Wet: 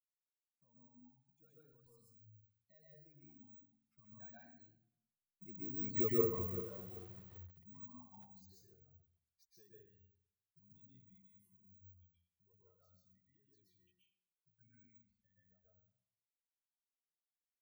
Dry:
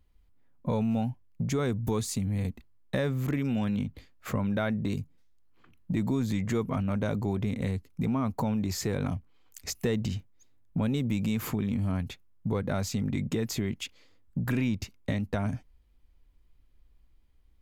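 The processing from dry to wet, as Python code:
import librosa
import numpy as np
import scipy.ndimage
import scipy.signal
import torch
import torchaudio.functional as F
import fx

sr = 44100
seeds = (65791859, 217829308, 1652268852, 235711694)

y = fx.bin_expand(x, sr, power=3.0)
y = fx.doppler_pass(y, sr, speed_mps=28, closest_m=2.2, pass_at_s=6.04)
y = (np.kron(y[::2], np.eye(2)[0]) * 2)[:len(y)]
y = fx.rev_plate(y, sr, seeds[0], rt60_s=0.71, hf_ratio=0.65, predelay_ms=110, drr_db=-5.5)
y = fx.echo_crushed(y, sr, ms=388, feedback_pct=35, bits=8, wet_db=-12.5)
y = y * 10.0 ** (-3.5 / 20.0)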